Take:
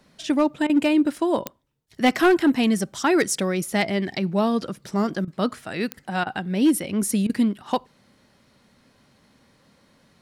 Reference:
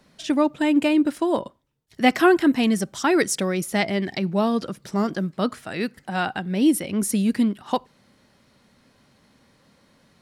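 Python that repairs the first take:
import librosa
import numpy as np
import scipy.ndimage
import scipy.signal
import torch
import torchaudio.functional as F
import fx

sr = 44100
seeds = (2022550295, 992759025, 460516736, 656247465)

y = fx.fix_declip(x, sr, threshold_db=-12.0)
y = fx.fix_declick_ar(y, sr, threshold=10.0)
y = fx.fix_interpolate(y, sr, at_s=(0.67, 5.25, 6.24, 7.27), length_ms=24.0)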